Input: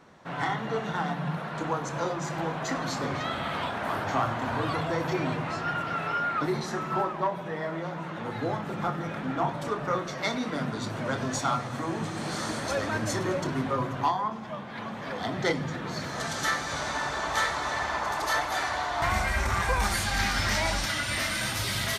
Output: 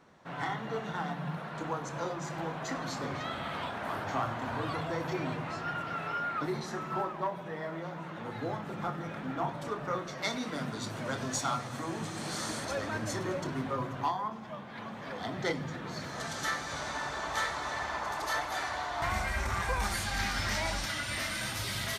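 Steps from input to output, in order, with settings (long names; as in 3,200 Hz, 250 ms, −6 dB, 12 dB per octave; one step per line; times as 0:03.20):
0:10.22–0:12.65: high-shelf EQ 4,100 Hz +7.5 dB
floating-point word with a short mantissa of 6 bits
level −5.5 dB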